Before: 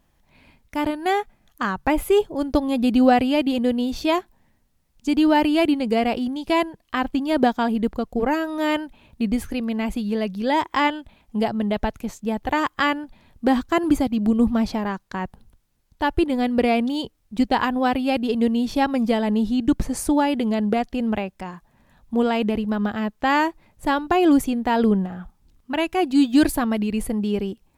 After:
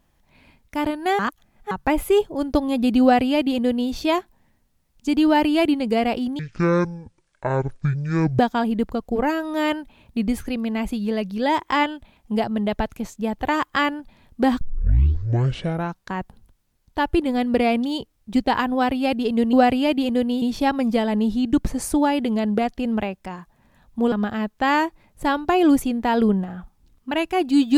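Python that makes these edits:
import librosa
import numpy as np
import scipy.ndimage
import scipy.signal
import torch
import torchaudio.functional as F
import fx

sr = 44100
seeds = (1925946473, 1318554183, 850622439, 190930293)

y = fx.edit(x, sr, fx.reverse_span(start_s=1.19, length_s=0.52),
    fx.duplicate(start_s=3.02, length_s=0.89, to_s=18.57),
    fx.speed_span(start_s=6.39, length_s=1.04, speed=0.52),
    fx.tape_start(start_s=13.65, length_s=1.44),
    fx.cut(start_s=22.27, length_s=0.47), tone=tone)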